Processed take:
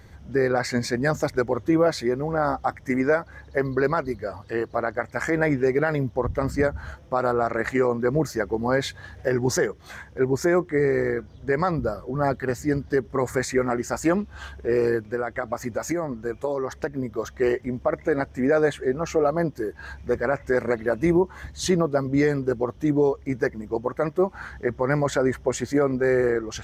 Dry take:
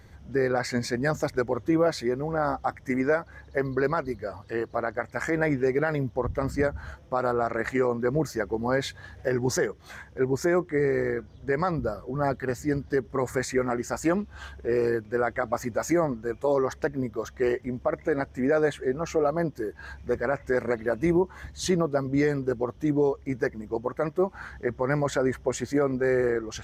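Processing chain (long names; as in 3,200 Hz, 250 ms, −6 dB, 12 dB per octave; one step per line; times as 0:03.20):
0:15.10–0:17.11: downward compressor, threshold −26 dBFS, peak gain reduction 7.5 dB
level +3 dB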